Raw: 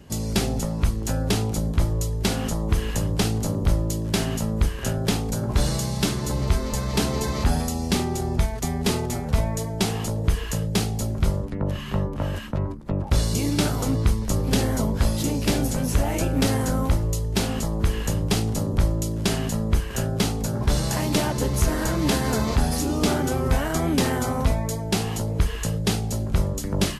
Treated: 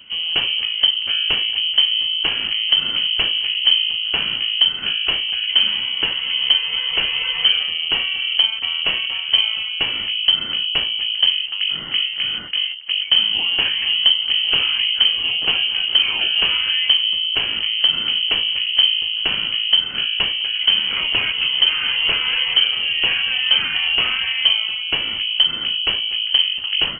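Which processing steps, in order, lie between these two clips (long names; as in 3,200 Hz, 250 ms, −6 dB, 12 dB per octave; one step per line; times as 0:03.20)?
voice inversion scrambler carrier 3,100 Hz
level +3 dB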